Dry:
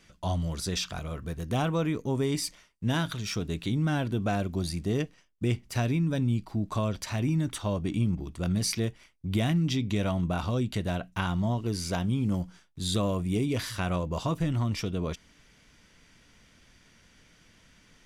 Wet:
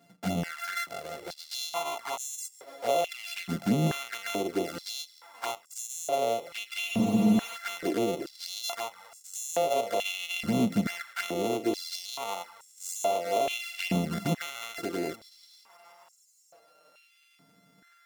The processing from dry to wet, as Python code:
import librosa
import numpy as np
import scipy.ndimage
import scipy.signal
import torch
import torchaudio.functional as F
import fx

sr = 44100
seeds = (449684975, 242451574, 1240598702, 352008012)

y = np.r_[np.sort(x[:len(x) // 64 * 64].reshape(-1, 64), axis=1).ravel(), x[len(x) // 64 * 64:]]
y = fx.echo_feedback(y, sr, ms=478, feedback_pct=59, wet_db=-18)
y = fx.env_flanger(y, sr, rest_ms=7.4, full_db=-25.0)
y = fx.spec_freeze(y, sr, seeds[0], at_s=6.89, hold_s=0.67)
y = fx.filter_held_highpass(y, sr, hz=2.3, low_hz=210.0, high_hz=7200.0)